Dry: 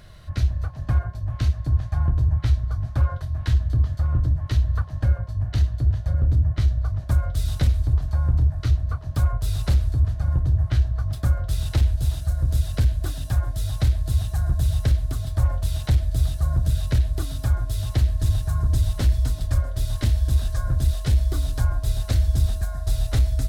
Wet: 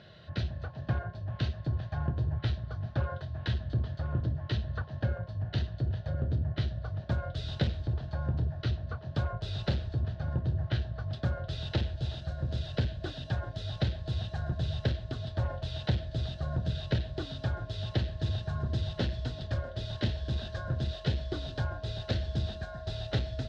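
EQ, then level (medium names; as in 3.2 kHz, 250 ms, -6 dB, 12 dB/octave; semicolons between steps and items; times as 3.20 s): cabinet simulation 180–3900 Hz, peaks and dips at 280 Hz -7 dB, 770 Hz -4 dB, 1.2 kHz -10 dB, 2.2 kHz -9 dB; band-stop 1 kHz, Q 10; +2.0 dB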